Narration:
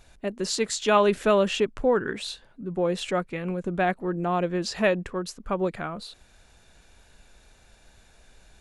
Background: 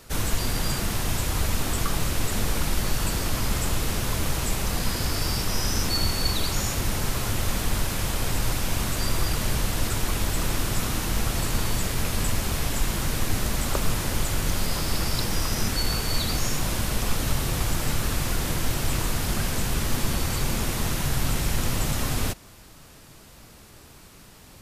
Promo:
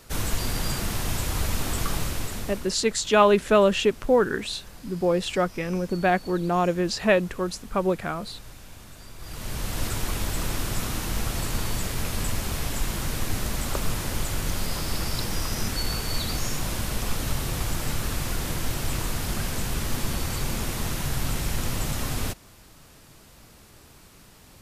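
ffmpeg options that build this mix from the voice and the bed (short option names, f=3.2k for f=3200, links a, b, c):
-filter_complex "[0:a]adelay=2250,volume=2.5dB[a];[1:a]volume=15.5dB,afade=t=out:st=1.94:d=0.8:silence=0.125893,afade=t=in:st=9.18:d=0.65:silence=0.141254[b];[a][b]amix=inputs=2:normalize=0"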